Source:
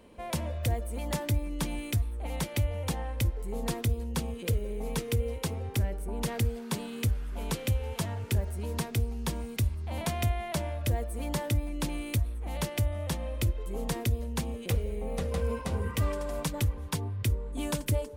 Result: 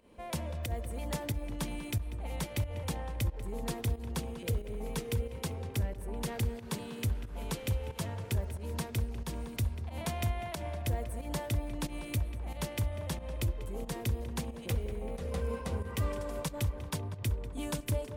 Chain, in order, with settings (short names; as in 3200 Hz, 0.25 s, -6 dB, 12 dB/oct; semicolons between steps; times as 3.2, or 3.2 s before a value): tape echo 0.194 s, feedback 77%, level -10 dB, low-pass 2500 Hz; pump 91 bpm, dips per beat 1, -11 dB, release 0.141 s; gain -4 dB